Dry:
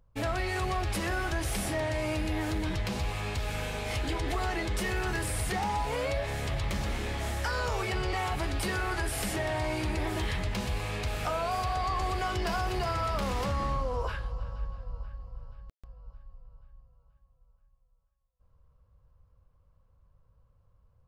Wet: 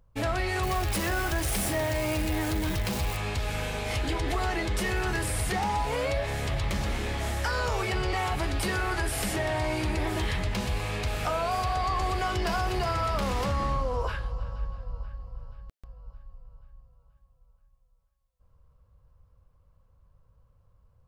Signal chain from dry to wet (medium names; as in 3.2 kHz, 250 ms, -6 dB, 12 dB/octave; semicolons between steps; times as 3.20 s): 0.63–3.17 s: zero-crossing glitches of -32 dBFS; trim +2.5 dB